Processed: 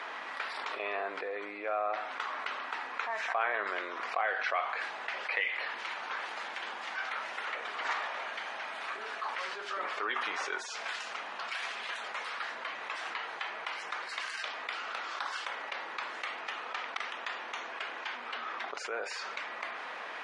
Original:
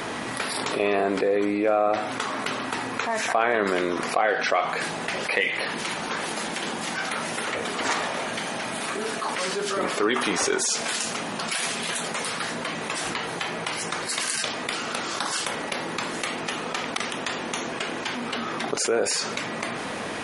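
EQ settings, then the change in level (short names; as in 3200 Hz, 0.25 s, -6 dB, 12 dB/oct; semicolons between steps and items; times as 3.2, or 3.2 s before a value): HPF 1100 Hz 12 dB/oct; tape spacing loss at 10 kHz 32 dB; 0.0 dB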